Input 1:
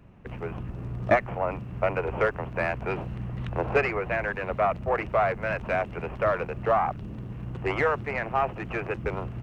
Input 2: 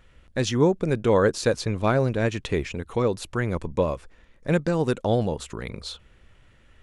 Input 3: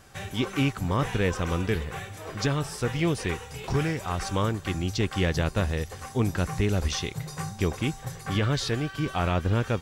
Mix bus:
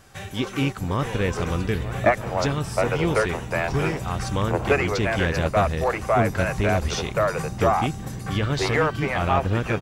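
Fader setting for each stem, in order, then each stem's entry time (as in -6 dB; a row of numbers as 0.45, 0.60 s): +2.5, -17.5, +1.0 dB; 0.95, 0.00, 0.00 s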